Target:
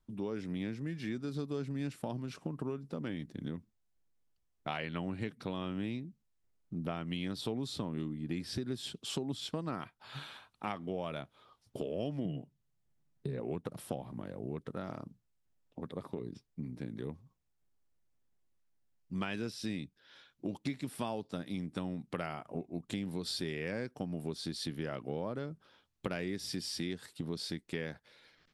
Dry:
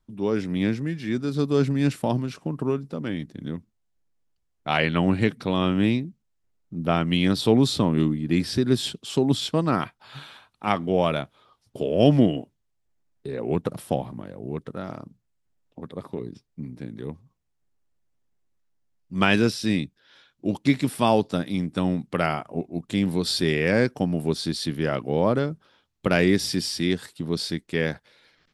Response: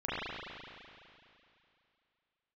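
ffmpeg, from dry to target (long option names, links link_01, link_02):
-filter_complex "[0:a]asettb=1/sr,asplit=3[link_01][link_02][link_03];[link_01]atrim=end=12.254[link_04];[link_02]atrim=start=12.25:end=13.4,asetpts=PTS-STARTPTS,afade=type=in:duration=0.004:curve=qsin,afade=type=out:start_time=1.146:duration=0.004:curve=qsin,equalizer=frequency=150:width=1.6:gain=12.5[link_05];[link_03]atrim=start=13.396[link_06];[link_04][link_05]acrossfade=duration=0.004:curve1=hsin:curve2=qsin[link_07];[link_07][link_06]acrossfade=duration=0.004:curve1=qsin:curve2=hsin,acompressor=threshold=-31dB:ratio=5,volume=-4dB"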